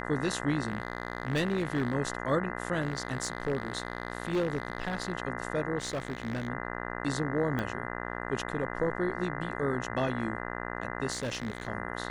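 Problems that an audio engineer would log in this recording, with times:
buzz 60 Hz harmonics 34 -37 dBFS
0.67–1.95 s: clipped -24 dBFS
2.81–5.13 s: clipped -24.5 dBFS
5.78–6.48 s: clipped -29 dBFS
7.59 s: pop -19 dBFS
11.11–11.67 s: clipped -29 dBFS

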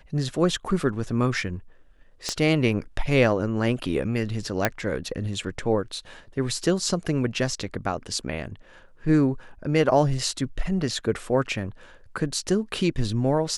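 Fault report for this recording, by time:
2.29 s: pop -12 dBFS
4.65 s: pop -5 dBFS

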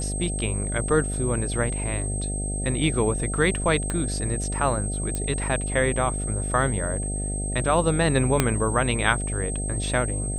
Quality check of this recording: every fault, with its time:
buzz 50 Hz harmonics 15 -29 dBFS
whine 8.3 kHz -31 dBFS
3.90 s: pop -14 dBFS
5.15 s: pop -15 dBFS
8.40 s: pop -4 dBFS

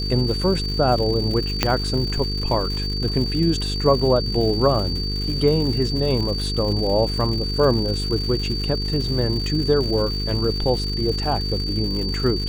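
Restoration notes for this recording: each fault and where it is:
buzz 50 Hz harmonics 9 -26 dBFS
crackle 210 per s -28 dBFS
whine 4.6 kHz -27 dBFS
1.63 s: pop -2 dBFS

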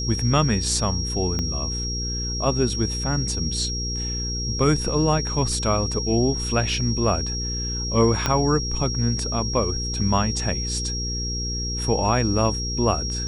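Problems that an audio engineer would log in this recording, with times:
hum 60 Hz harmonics 8 -29 dBFS
whine 5.6 kHz -28 dBFS
1.39 s: pop -14 dBFS
8.26 s: pop -6 dBFS

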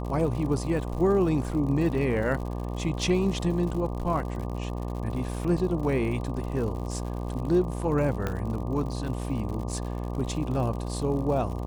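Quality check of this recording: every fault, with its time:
buzz 60 Hz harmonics 20 -32 dBFS
crackle 100 per s -35 dBFS
8.27 s: pop -15 dBFS

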